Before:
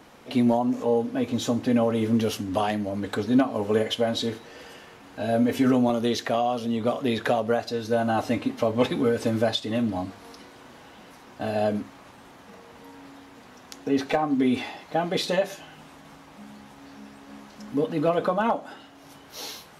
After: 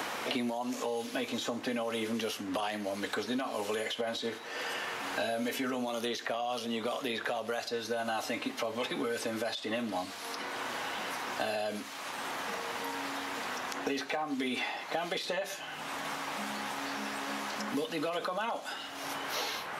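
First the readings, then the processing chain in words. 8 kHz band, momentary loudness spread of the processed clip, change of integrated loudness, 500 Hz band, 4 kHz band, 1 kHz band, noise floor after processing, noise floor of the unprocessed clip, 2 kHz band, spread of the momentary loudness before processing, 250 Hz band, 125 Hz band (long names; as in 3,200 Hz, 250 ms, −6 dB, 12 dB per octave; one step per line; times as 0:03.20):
0.0 dB, 4 LU, −9.5 dB, −9.5 dB, −2.0 dB, −5.5 dB, −43 dBFS, −50 dBFS, 0.0 dB, 15 LU, −12.5 dB, −17.5 dB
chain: high-pass filter 1,200 Hz 6 dB per octave
brickwall limiter −26.5 dBFS, peak gain reduction 11 dB
multiband upward and downward compressor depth 100%
level +1.5 dB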